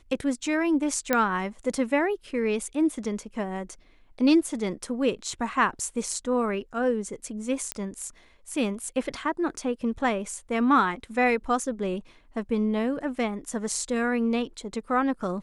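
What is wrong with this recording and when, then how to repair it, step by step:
0:01.13: click −8 dBFS
0:07.72: click −11 dBFS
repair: click removal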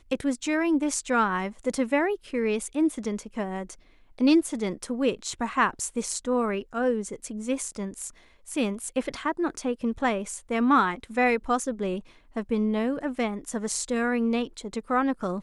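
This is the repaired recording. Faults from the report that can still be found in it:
none of them is left

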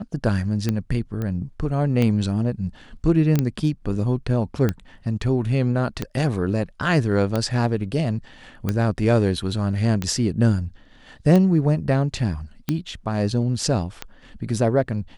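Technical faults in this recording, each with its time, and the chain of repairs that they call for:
scratch tick 45 rpm −10 dBFS
0:01.22: click −17 dBFS
0:03.39: click −8 dBFS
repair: click removal

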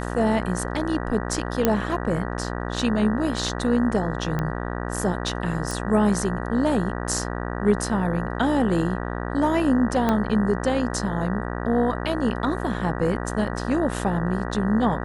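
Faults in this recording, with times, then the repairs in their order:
mains buzz 60 Hz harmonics 32 −29 dBFS
0:01.65: click −5 dBFS
0:04.39: click −14 dBFS
0:05.71: click
0:10.09: click −9 dBFS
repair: click removal
hum removal 60 Hz, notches 32

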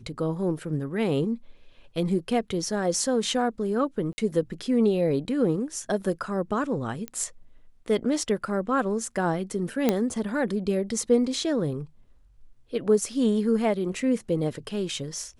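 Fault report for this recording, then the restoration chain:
0:04.13–0:04.18: drop-out 50 ms
0:07.08: click −18 dBFS
0:09.89: click −8 dBFS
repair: click removal
repair the gap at 0:04.13, 50 ms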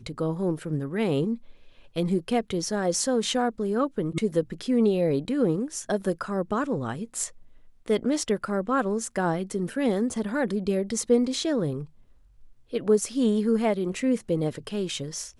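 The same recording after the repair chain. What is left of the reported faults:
0:07.08: click

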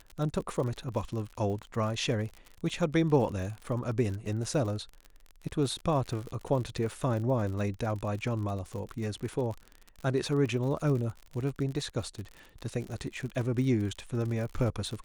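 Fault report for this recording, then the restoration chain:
surface crackle 54 per second −36 dBFS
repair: click removal

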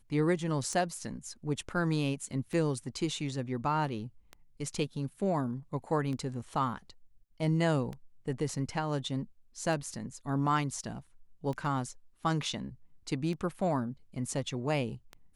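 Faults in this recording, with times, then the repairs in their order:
scratch tick 33 1/3 rpm −27 dBFS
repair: click removal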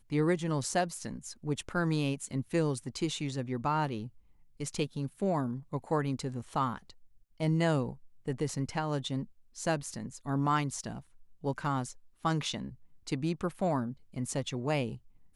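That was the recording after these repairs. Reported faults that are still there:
none of them is left

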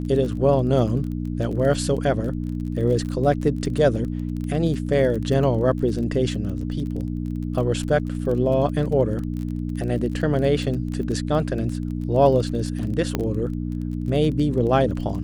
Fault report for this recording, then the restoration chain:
surface crackle 26 per second −29 dBFS
mains hum 60 Hz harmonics 5 −27 dBFS
0:13.15: click −9 dBFS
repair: click removal
hum removal 60 Hz, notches 5

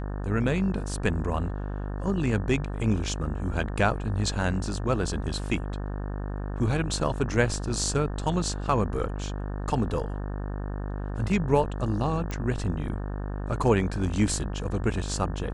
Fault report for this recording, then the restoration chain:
mains buzz 50 Hz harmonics 36 −32 dBFS
0:12.31: click −19 dBFS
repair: click removal
hum removal 50 Hz, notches 36

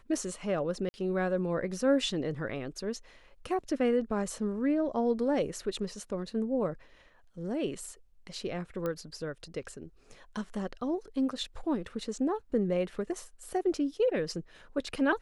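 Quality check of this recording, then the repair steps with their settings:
0:00.89–0:00.94: drop-out 50 ms
0:08.86: click −21 dBFS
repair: click removal
repair the gap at 0:00.89, 50 ms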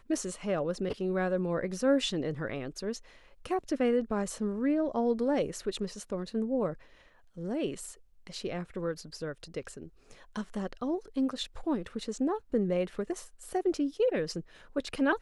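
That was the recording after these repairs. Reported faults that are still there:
none of them is left

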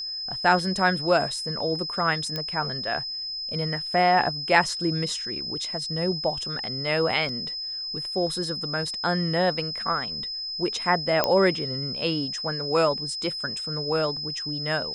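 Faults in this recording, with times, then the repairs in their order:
whistle 5,100 Hz −30 dBFS
0:02.36: click −15 dBFS
0:07.29: drop-out 2.5 ms
0:11.24: click −6 dBFS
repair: click removal
notch filter 5,100 Hz, Q 30
repair the gap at 0:07.29, 2.5 ms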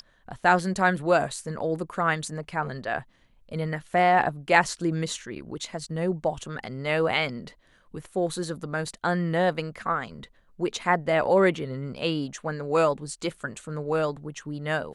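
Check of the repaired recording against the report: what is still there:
none of them is left

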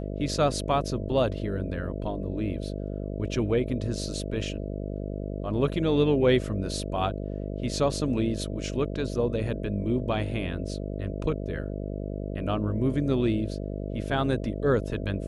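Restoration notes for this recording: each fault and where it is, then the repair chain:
mains buzz 50 Hz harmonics 13 −33 dBFS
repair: hum removal 50 Hz, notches 13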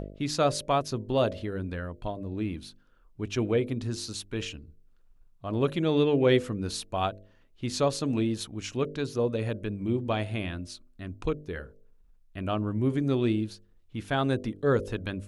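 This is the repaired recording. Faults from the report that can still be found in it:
none of them is left

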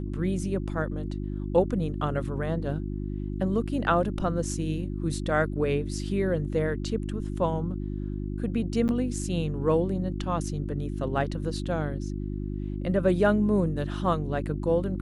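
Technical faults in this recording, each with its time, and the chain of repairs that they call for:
mains hum 50 Hz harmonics 7 −32 dBFS
0:08.88–0:08.89: drop-out 9.7 ms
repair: hum removal 50 Hz, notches 7
repair the gap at 0:08.88, 9.7 ms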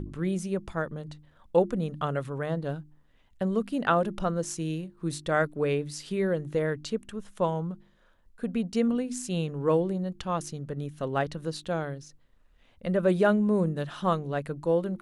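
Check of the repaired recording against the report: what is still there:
none of them is left

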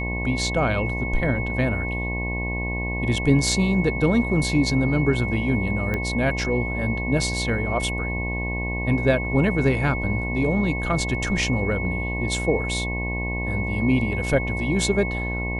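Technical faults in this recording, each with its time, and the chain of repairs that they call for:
mains buzz 60 Hz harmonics 18 −28 dBFS
whistle 2,200 Hz −29 dBFS
0:05.94: click −14 dBFS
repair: click removal
notch filter 2,200 Hz, Q 30
hum removal 60 Hz, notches 18

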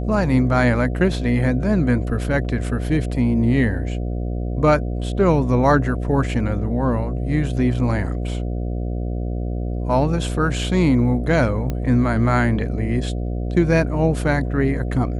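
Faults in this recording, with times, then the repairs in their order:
mains buzz 60 Hz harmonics 12 −24 dBFS
0:11.70: click −13 dBFS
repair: click removal
hum removal 60 Hz, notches 12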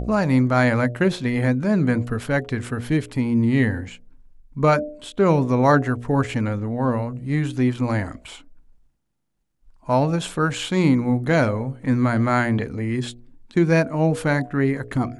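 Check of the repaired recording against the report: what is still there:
0:11.70: click

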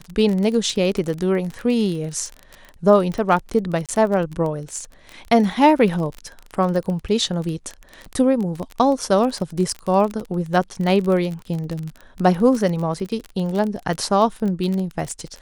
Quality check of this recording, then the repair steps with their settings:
surface crackle 28 per second −24 dBFS
0:03.86–0:03.89: drop-out 27 ms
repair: click removal
repair the gap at 0:03.86, 27 ms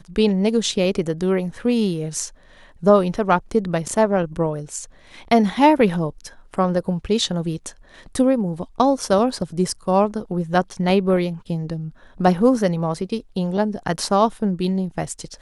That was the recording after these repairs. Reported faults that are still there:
none of them is left

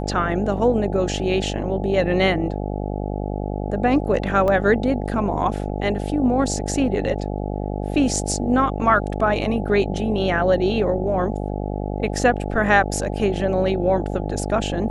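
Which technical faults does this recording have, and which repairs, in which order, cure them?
mains buzz 50 Hz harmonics 17 −26 dBFS
0:04.48: drop-out 2.3 ms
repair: hum removal 50 Hz, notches 17
repair the gap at 0:04.48, 2.3 ms

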